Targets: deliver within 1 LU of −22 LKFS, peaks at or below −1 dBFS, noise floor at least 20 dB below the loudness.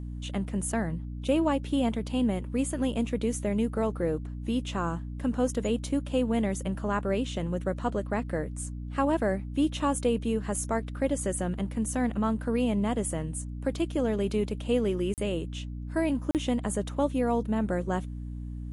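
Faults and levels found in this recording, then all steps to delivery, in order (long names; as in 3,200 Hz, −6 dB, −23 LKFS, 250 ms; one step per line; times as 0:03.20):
number of dropouts 2; longest dropout 38 ms; mains hum 60 Hz; hum harmonics up to 300 Hz; level of the hum −34 dBFS; integrated loudness −29.5 LKFS; sample peak −13.5 dBFS; target loudness −22.0 LKFS
→ repair the gap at 0:15.14/0:16.31, 38 ms
hum removal 60 Hz, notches 5
level +7.5 dB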